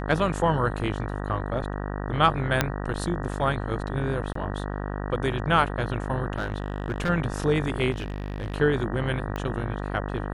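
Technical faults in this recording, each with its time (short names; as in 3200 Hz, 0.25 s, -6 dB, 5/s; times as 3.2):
buzz 50 Hz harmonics 38 -31 dBFS
2.61 pop -5 dBFS
4.33–4.35 gap 24 ms
6.38–7.1 clipped -22.5 dBFS
7.91–8.55 clipped -26.5 dBFS
9.36 pop -18 dBFS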